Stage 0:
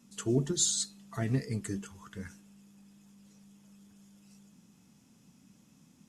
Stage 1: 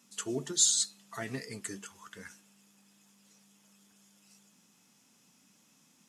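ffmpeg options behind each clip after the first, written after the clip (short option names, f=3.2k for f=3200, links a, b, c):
-af "highpass=f=890:p=1,volume=3.5dB"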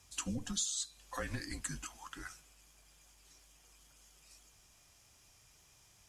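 -af "asubboost=boost=6:cutoff=57,afreqshift=-150,acompressor=threshold=-36dB:ratio=6,volume=1.5dB"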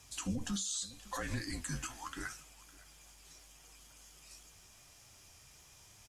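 -af "aecho=1:1:558:0.0794,alimiter=level_in=10dB:limit=-24dB:level=0:latency=1:release=49,volume=-10dB,flanger=delay=6.2:depth=9.6:regen=62:speed=0.81:shape=triangular,volume=9.5dB"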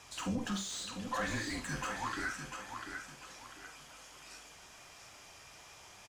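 -filter_complex "[0:a]asplit=2[a][b];[b]aecho=0:1:696|1392|2088|2784:0.355|0.114|0.0363|0.0116[c];[a][c]amix=inputs=2:normalize=0,asplit=2[d][e];[e]highpass=f=720:p=1,volume=18dB,asoftclip=type=tanh:threshold=-24.5dB[f];[d][f]amix=inputs=2:normalize=0,lowpass=f=1.6k:p=1,volume=-6dB,asplit=2[g][h];[h]aecho=0:1:46|72:0.355|0.188[i];[g][i]amix=inputs=2:normalize=0"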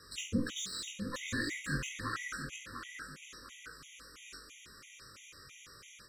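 -af "flanger=delay=19:depth=3.6:speed=1.9,asuperstop=centerf=780:order=8:qfactor=1.3,afftfilt=real='re*gt(sin(2*PI*3*pts/sr)*(1-2*mod(floor(b*sr/1024/1900),2)),0)':imag='im*gt(sin(2*PI*3*pts/sr)*(1-2*mod(floor(b*sr/1024/1900),2)),0)':win_size=1024:overlap=0.75,volume=7dB"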